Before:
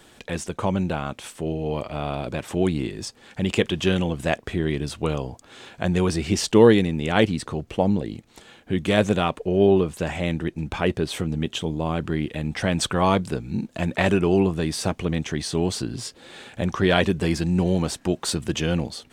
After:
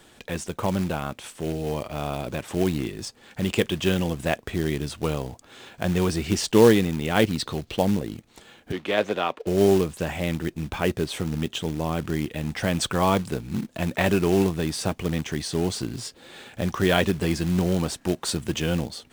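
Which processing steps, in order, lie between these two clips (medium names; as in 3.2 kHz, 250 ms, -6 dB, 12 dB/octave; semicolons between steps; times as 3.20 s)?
7.38–7.85 s: peaking EQ 4 kHz +12.5 dB 0.93 oct; short-mantissa float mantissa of 2-bit; 8.72–9.47 s: three-band isolator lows -18 dB, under 290 Hz, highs -16 dB, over 4.6 kHz; trim -1.5 dB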